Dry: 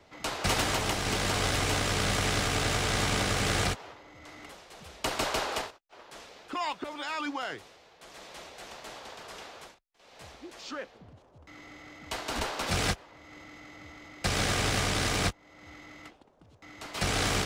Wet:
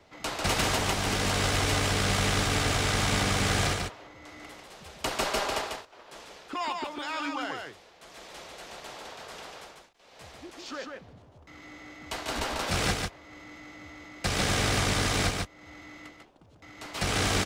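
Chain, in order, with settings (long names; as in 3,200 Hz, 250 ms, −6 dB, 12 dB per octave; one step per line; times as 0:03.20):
single-tap delay 145 ms −4 dB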